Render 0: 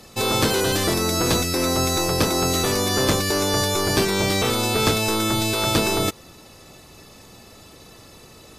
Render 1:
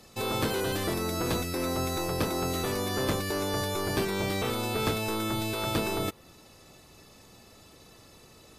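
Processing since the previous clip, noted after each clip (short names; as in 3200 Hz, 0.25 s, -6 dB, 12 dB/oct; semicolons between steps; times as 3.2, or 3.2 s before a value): dynamic EQ 6100 Hz, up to -7 dB, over -41 dBFS, Q 0.91; gain -8 dB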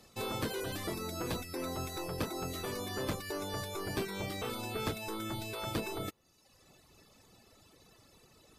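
reverb removal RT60 1 s; gain -5.5 dB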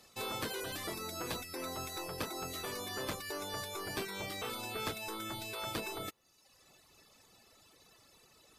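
low shelf 480 Hz -9 dB; gain +1 dB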